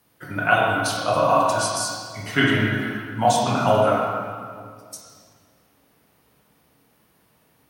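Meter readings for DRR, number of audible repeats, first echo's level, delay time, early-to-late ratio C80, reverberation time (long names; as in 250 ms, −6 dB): −4.5 dB, no echo audible, no echo audible, no echo audible, 1.0 dB, 2.0 s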